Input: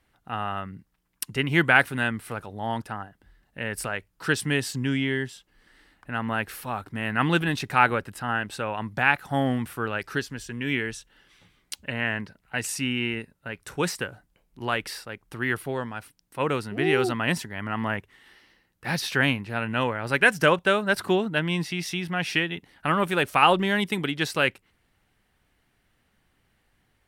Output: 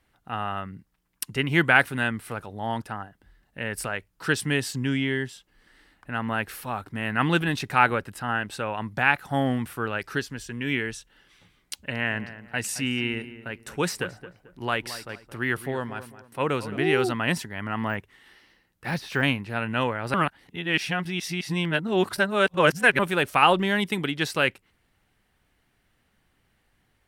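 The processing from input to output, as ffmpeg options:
ffmpeg -i in.wav -filter_complex "[0:a]asettb=1/sr,asplit=3[link_01][link_02][link_03];[link_01]atrim=end=11.734[link_04];[link_02]atrim=start=11.73:end=16.77,asetpts=PTS-STARTPTS,afade=type=in:duration=0.004:curve=qsin,afade=type=out:start_time=5.036:duration=0.004:curve=qsin,asplit=2[link_05][link_06];[link_06]adelay=220,lowpass=frequency=2000:poles=1,volume=-13dB,asplit=2[link_07][link_08];[link_08]adelay=220,lowpass=frequency=2000:poles=1,volume=0.34,asplit=2[link_09][link_10];[link_10]adelay=220,lowpass=frequency=2000:poles=1,volume=0.34[link_11];[link_05][link_07][link_09][link_11]amix=inputs=4:normalize=0,atrim=end_sample=222264[link_12];[link_03]atrim=start=16.766[link_13];[link_04][link_12]acrossfade=duration=0.004:curve1=hsin:curve2=qsin[link_14];[link_14][link_13]acrossfade=duration=0.004:curve1=qsin:curve2=hsin,asettb=1/sr,asplit=3[link_15][link_16][link_17];[link_15]atrim=end=17.714[link_18];[link_16]atrim=start=17.71:end=19.23,asetpts=PTS-STARTPTS,afade=type=in:duration=0.004:curve=qsin,afade=type=out:start_time=1.516:duration=0.004:curve=qsin,deesser=0.95[link_19];[link_17]atrim=start=19.226[link_20];[link_18][link_19]acrossfade=duration=0.004:curve1=hsin:curve2=qsin[link_21];[link_21][link_20]acrossfade=duration=0.004:curve1=qsin:curve2=hsin,asplit=3[link_22][link_23][link_24];[link_22]atrim=end=20.142[link_25];[link_23]atrim=start=20.138:end=22.992,asetpts=PTS-STARTPTS,areverse[link_26];[link_24]atrim=start=22.988[link_27];[link_25][link_26]acrossfade=duration=0.004:curve1=hsin:curve2=hsin[link_28];[link_28][link_27]acrossfade=duration=0.004:curve1=hsin:curve2=hsin" out.wav

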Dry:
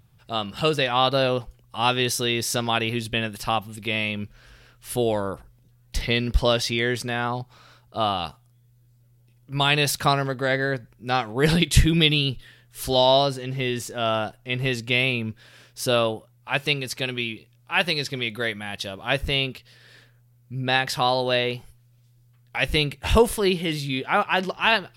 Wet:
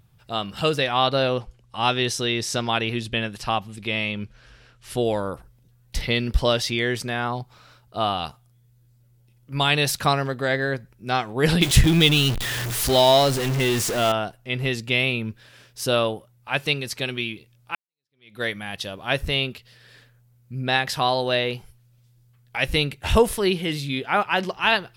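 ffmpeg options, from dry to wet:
ffmpeg -i in.wav -filter_complex "[0:a]asettb=1/sr,asplit=3[link_01][link_02][link_03];[link_01]atrim=end=1.044[link_04];[link_02]atrim=start=1.04:end=5.05,asetpts=PTS-STARTPTS,afade=type=in:duration=0.004:curve=qsin,afade=type=out:start_time=4.006:duration=0.004:curve=qsin,lowpass=8300[link_05];[link_03]atrim=start=5.046[link_06];[link_04][link_05]acrossfade=duration=0.004:curve1=hsin:curve2=qsin[link_07];[link_07][link_06]acrossfade=duration=0.004:curve1=qsin:curve2=hsin,asettb=1/sr,asplit=3[link_08][link_09][link_10];[link_08]atrim=end=11.614[link_11];[link_09]atrim=start=11.61:end=14.12,asetpts=PTS-STARTPTS,afade=type=in:duration=0.004:curve=qsin,afade=type=out:start_time=2.506:duration=0.004:curve=qsin,aeval=exprs='val(0)+0.5*0.0841*sgn(val(0))':channel_layout=same[link_12];[link_10]atrim=start=14.116[link_13];[link_11][link_12]acrossfade=duration=0.004:curve1=hsin:curve2=qsin[link_14];[link_14][link_13]acrossfade=duration=0.004:curve1=qsin:curve2=hsin,asplit=2[link_15][link_16];[link_15]atrim=end=17.75,asetpts=PTS-STARTPTS,afade=type=out:start_time=17.746:duration=0.004:curve=hsin[link_17];[link_16]atrim=start=17.75,asetpts=PTS-STARTPTS,afade=type=in:duration=0.67:curve=exp[link_18];[link_17][link_18]concat=n=2:v=0:a=1" out.wav

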